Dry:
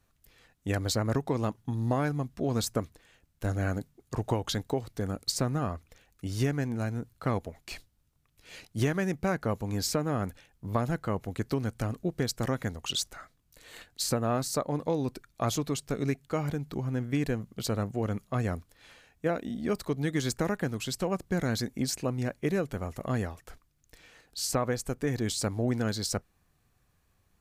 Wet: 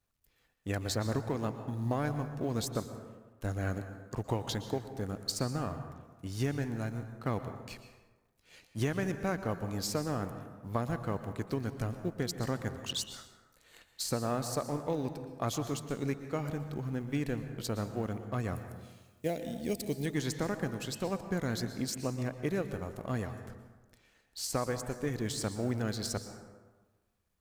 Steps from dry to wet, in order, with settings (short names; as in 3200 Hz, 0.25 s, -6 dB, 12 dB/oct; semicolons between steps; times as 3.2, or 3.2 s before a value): G.711 law mismatch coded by A; 18.55–20.06 EQ curve 670 Hz 0 dB, 1300 Hz -18 dB, 2100 Hz +1 dB, 11000 Hz +12 dB; plate-style reverb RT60 1.3 s, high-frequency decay 0.5×, pre-delay 0.105 s, DRR 9 dB; gain -3.5 dB